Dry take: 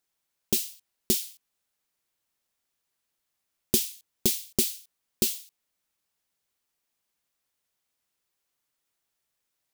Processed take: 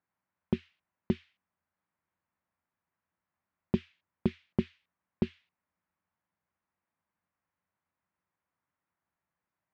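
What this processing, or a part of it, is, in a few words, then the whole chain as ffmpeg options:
bass cabinet: -af "highpass=62,equalizer=f=85:t=q:w=4:g=9,equalizer=f=180:t=q:w=4:g=8,equalizer=f=430:t=q:w=4:g=-6,equalizer=f=1k:t=q:w=4:g=4,lowpass=f=2k:w=0.5412,lowpass=f=2k:w=1.3066"

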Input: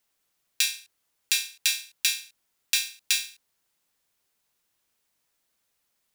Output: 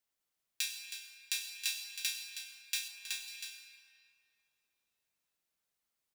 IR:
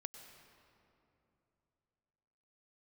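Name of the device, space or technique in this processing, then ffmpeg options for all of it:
cave: -filter_complex "[0:a]aecho=1:1:319:0.316[a];[1:a]atrim=start_sample=2205[b];[a][b]afir=irnorm=-1:irlink=0,asettb=1/sr,asplit=3[c][d][e];[c]atrim=end=2.884[f];[d]atrim=start=2.88:end=3.28,asetpts=PTS-STARTPTS,afade=t=in:d=0.004:c=qsin,afade=t=out:st=0.396:d=0.004:c=qsin,tiltshelf=f=1.3k:g=4.5[g];[e]atrim=start=3.276[h];[f][g]acrossfade=d=0.004:c1=hsin:c2=qsin[i];[i][h]acrossfade=d=0.004:c1=qsin:c2=hsin,volume=-7dB"

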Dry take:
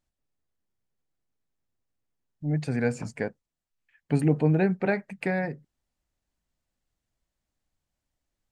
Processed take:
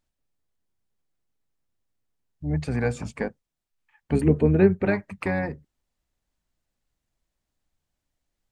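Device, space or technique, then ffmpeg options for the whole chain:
octave pedal: -filter_complex "[0:a]asettb=1/sr,asplit=3[a][b][c];[a]atrim=end=4.154[d];[b]atrim=start=4.15:end=4.84,asetpts=PTS-STARTPTS,afade=t=in:d=0.004:c=qsin,afade=t=out:st=0.686:d=0.004:c=qsin,equalizer=f=400:t=o:w=0.33:g=9,equalizer=f=800:t=o:w=0.33:g=-7,equalizer=f=5k:t=o:w=0.33:g=-10[e];[c]atrim=start=4.836[f];[d][e]acrossfade=d=0.004:c1=hsin:c2=qsin[g];[g][f]acrossfade=d=0.004:c1=qsin:c2=hsin,asplit=2[h][i];[i]asetrate=22050,aresample=44100,atempo=2,volume=-7dB[j];[h][j]amix=inputs=2:normalize=0,volume=1dB"

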